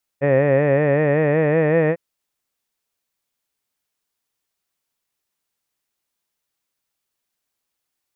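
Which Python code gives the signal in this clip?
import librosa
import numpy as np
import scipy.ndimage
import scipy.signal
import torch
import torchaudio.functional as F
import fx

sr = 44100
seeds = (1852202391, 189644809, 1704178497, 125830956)

y = fx.vowel(sr, seeds[0], length_s=1.75, word='head', hz=136.0, glide_st=3.0, vibrato_hz=5.3, vibrato_st=0.9)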